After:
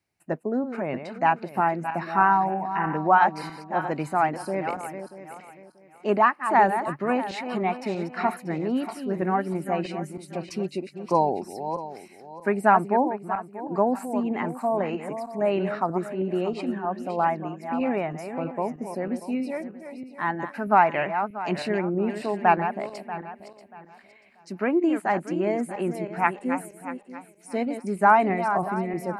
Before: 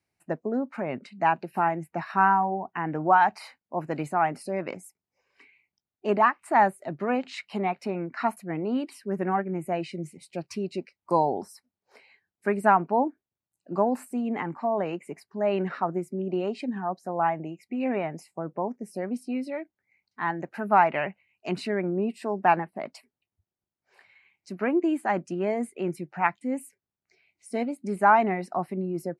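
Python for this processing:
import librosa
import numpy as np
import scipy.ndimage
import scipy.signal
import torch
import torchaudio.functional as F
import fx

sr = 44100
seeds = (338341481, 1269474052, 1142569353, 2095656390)

y = fx.reverse_delay_fb(x, sr, ms=318, feedback_pct=50, wet_db=-9)
y = y * librosa.db_to_amplitude(1.5)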